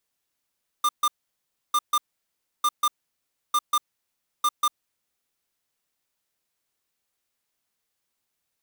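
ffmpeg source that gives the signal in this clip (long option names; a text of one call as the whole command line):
ffmpeg -f lavfi -i "aevalsrc='0.0944*(2*lt(mod(1200*t,1),0.5)-1)*clip(min(mod(mod(t,0.9),0.19),0.05-mod(mod(t,0.9),0.19))/0.005,0,1)*lt(mod(t,0.9),0.38)':duration=4.5:sample_rate=44100" out.wav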